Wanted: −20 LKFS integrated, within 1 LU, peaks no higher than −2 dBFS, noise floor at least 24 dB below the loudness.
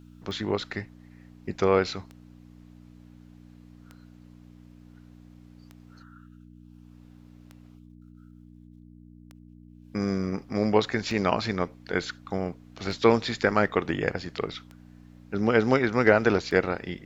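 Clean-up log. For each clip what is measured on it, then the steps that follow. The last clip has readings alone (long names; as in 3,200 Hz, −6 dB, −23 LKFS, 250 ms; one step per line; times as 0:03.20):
number of clicks 10; mains hum 60 Hz; hum harmonics up to 300 Hz; level of the hum −47 dBFS; integrated loudness −26.5 LKFS; sample peak −4.0 dBFS; target loudness −20.0 LKFS
→ click removal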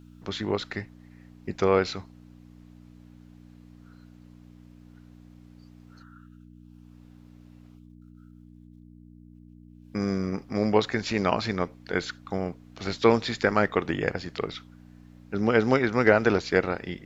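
number of clicks 0; mains hum 60 Hz; hum harmonics up to 300 Hz; level of the hum −47 dBFS
→ hum removal 60 Hz, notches 5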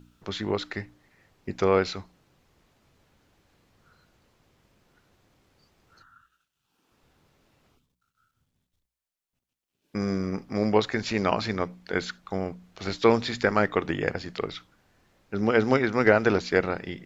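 mains hum none found; integrated loudness −26.5 LKFS; sample peak −4.0 dBFS; target loudness −20.0 LKFS
→ level +6.5 dB
brickwall limiter −2 dBFS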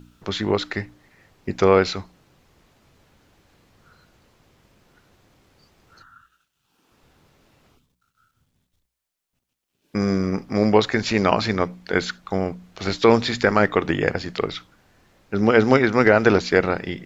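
integrated loudness −20.5 LKFS; sample peak −2.0 dBFS; background noise floor −78 dBFS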